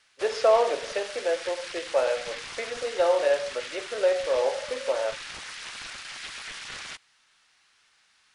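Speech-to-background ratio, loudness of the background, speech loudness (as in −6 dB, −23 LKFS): 10.5 dB, −37.5 LKFS, −27.0 LKFS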